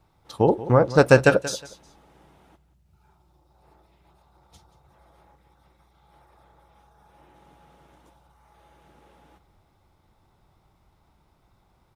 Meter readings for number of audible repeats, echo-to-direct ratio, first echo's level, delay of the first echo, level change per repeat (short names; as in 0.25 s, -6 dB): 2, -16.0 dB, -16.0 dB, 0.181 s, -12.5 dB